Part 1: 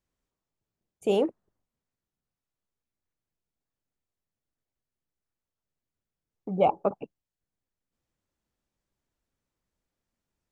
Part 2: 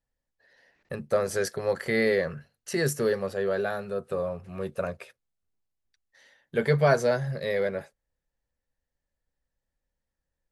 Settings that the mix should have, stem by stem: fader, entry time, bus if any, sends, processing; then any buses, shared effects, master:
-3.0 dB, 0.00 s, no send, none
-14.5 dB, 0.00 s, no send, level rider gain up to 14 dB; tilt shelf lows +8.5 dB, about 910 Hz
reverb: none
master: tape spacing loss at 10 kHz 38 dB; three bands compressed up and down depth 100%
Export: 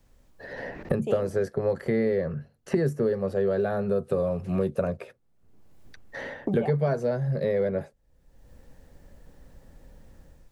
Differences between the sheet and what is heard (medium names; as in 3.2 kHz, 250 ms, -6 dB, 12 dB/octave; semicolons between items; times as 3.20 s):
stem 1 -3.0 dB -> -14.0 dB; master: missing tape spacing loss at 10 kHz 38 dB